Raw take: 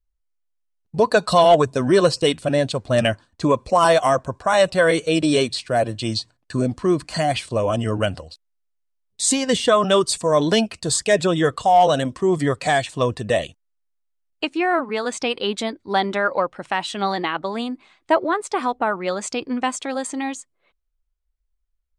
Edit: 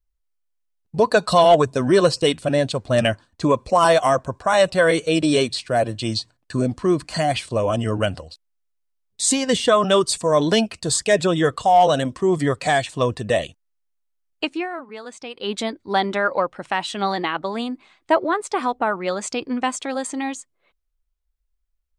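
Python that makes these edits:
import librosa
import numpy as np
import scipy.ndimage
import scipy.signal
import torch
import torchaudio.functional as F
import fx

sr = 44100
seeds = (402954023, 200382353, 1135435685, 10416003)

y = fx.edit(x, sr, fx.fade_down_up(start_s=14.52, length_s=1.02, db=-11.5, fade_s=0.17), tone=tone)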